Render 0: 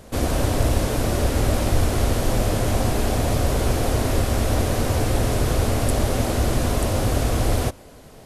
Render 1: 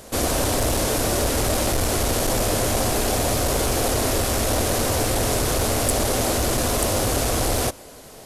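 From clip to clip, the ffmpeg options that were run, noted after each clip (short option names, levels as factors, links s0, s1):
-af "aeval=exprs='0.501*sin(PI/2*1.78*val(0)/0.501)':c=same,bass=f=250:g=-7,treble=f=4000:g=6,volume=0.531"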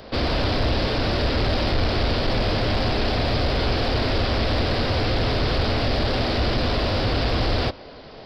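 -filter_complex "[0:a]aresample=11025,aresample=44100,acrossover=split=240|1900[s0][s1][s2];[s1]asoftclip=type=hard:threshold=0.0398[s3];[s0][s3][s2]amix=inputs=3:normalize=0,volume=1.33"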